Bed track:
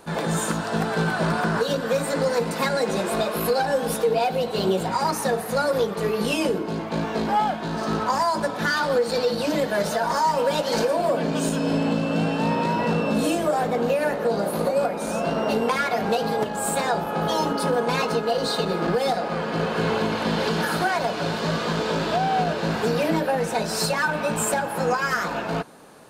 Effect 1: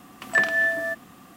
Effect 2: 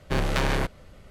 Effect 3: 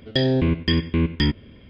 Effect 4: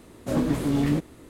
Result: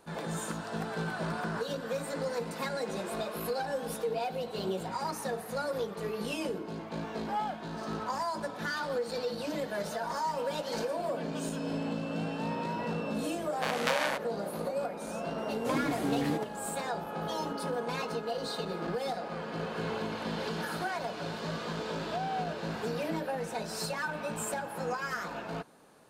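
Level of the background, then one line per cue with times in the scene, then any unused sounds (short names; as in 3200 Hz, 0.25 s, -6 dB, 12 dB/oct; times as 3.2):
bed track -11.5 dB
13.51 add 2 -2 dB + steep high-pass 550 Hz
15.38 add 4 -4.5 dB + HPF 300 Hz 6 dB/oct
not used: 1, 3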